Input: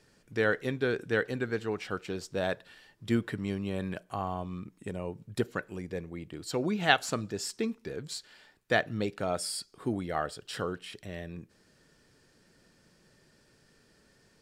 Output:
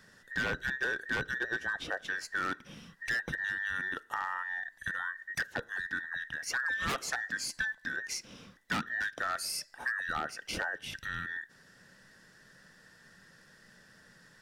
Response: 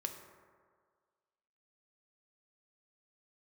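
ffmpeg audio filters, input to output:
-af "afftfilt=real='real(if(between(b,1,1012),(2*floor((b-1)/92)+1)*92-b,b),0)':imag='imag(if(between(b,1,1012),(2*floor((b-1)/92)+1)*92-b,b),0)*if(between(b,1,1012),-1,1)':win_size=2048:overlap=0.75,bass=f=250:g=3,treble=f=4000:g=5,aeval=exprs='0.0794*(abs(mod(val(0)/0.0794+3,4)-2)-1)':c=same,highshelf=f=4000:g=-9,acompressor=threshold=0.0112:ratio=2.5,volume=1.88"

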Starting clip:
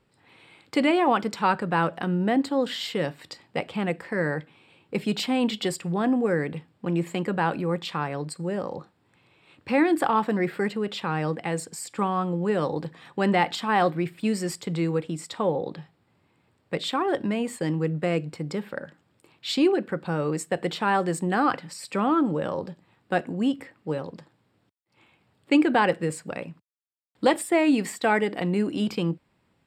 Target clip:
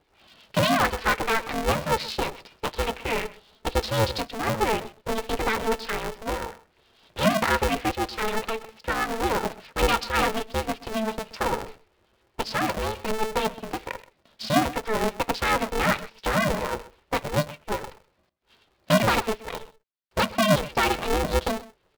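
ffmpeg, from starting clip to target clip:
-filter_complex "[0:a]aeval=exprs='0.447*(cos(1*acos(clip(val(0)/0.447,-1,1)))-cos(1*PI/2))+0.0708*(cos(3*acos(clip(val(0)/0.447,-1,1)))-cos(3*PI/2))+0.01*(cos(8*acos(clip(val(0)/0.447,-1,1)))-cos(8*PI/2))':c=same,flanger=delay=1.8:depth=9.8:regen=-21:speed=0.16:shape=triangular,asplit=2[s0][s1];[s1]aeval=exprs='0.316*sin(PI/2*3.98*val(0)/0.316)':c=same,volume=0.447[s2];[s0][s2]amix=inputs=2:normalize=0,acrossover=split=970[s3][s4];[s3]aeval=exprs='val(0)*(1-0.5/2+0.5/2*cos(2*PI*6.1*n/s))':c=same[s5];[s4]aeval=exprs='val(0)*(1-0.5/2-0.5/2*cos(2*PI*6.1*n/s))':c=same[s6];[s5][s6]amix=inputs=2:normalize=0,asplit=2[s7][s8];[s8]aecho=0:1:172:0.119[s9];[s7][s9]amix=inputs=2:normalize=0,aresample=8000,aresample=44100,asetrate=59535,aresample=44100,aeval=exprs='val(0)*sgn(sin(2*PI*220*n/s))':c=same"

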